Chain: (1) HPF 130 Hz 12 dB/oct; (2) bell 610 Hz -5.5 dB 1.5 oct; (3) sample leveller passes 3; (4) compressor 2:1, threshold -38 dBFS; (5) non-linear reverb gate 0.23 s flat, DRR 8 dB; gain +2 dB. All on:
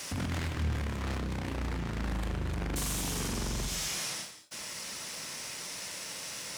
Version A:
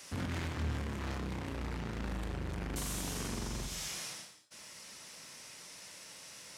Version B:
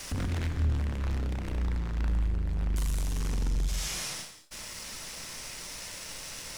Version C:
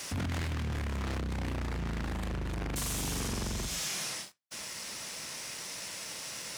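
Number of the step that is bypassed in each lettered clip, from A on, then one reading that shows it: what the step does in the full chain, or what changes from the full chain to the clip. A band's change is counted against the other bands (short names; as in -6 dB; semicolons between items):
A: 3, momentary loudness spread change +6 LU; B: 1, 125 Hz band +6.5 dB; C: 5, crest factor change -3.0 dB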